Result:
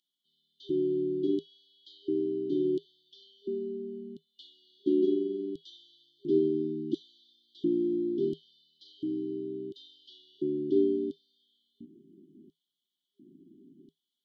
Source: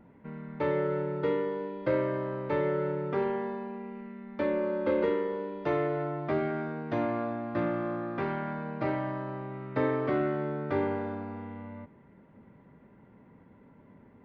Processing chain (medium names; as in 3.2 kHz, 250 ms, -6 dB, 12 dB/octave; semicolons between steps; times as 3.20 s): LFO high-pass square 0.72 Hz 320–3700 Hz; peaking EQ 160 Hz +7.5 dB 0.22 oct; FFT band-reject 400–2900 Hz